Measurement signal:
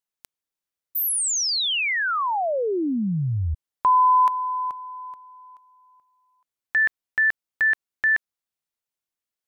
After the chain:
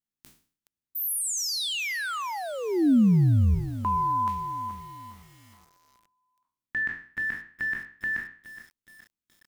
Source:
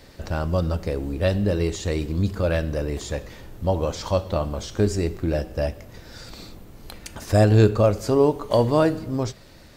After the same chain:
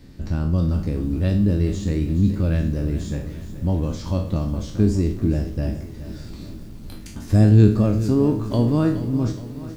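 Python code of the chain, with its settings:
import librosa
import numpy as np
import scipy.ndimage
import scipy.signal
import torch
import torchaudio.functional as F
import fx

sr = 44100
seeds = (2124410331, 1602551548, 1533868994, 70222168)

y = fx.spec_trails(x, sr, decay_s=0.45)
y = fx.low_shelf_res(y, sr, hz=380.0, db=11.0, q=1.5)
y = fx.echo_crushed(y, sr, ms=420, feedback_pct=55, bits=6, wet_db=-13)
y = F.gain(torch.from_numpy(y), -8.0).numpy()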